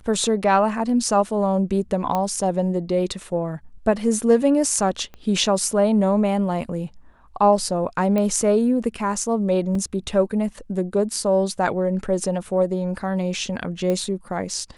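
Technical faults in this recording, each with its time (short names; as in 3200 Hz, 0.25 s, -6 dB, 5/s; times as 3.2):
2.15 pop -11 dBFS
5.14 pop -25 dBFS
8.18 pop -12 dBFS
9.75 gap 2.5 ms
13.9 pop -13 dBFS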